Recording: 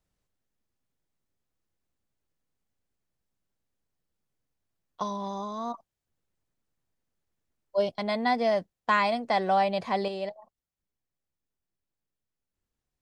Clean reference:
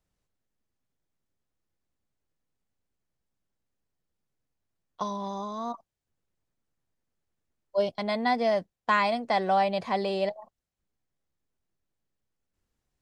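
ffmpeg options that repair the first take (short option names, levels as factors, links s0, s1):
-af "asetnsamples=n=441:p=0,asendcmd='10.08 volume volume 5.5dB',volume=1"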